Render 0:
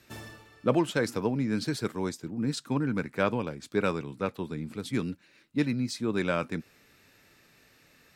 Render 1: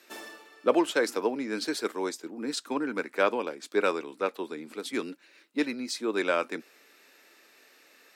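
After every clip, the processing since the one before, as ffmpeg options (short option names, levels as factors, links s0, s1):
-af "highpass=f=310:w=0.5412,highpass=f=310:w=1.3066,volume=1.41"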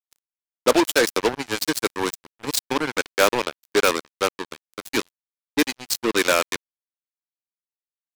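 -filter_complex "[0:a]asplit=2[s0][s1];[s1]volume=26.6,asoftclip=hard,volume=0.0376,volume=0.447[s2];[s0][s2]amix=inputs=2:normalize=0,acrusher=bits=3:mix=0:aa=0.5,highshelf=f=3300:g=10,volume=1.58"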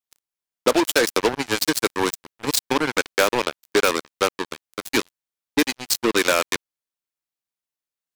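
-af "acompressor=threshold=0.126:ratio=6,volume=1.58"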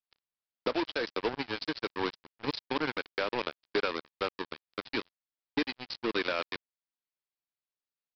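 -af "alimiter=limit=0.282:level=0:latency=1:release=473,aresample=11025,acrusher=bits=3:mode=log:mix=0:aa=0.000001,aresample=44100,volume=0.473"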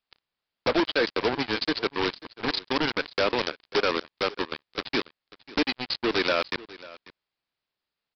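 -af "aresample=11025,aeval=exprs='0.133*sin(PI/2*2.51*val(0)/0.133)':c=same,aresample=44100,aecho=1:1:542:0.106"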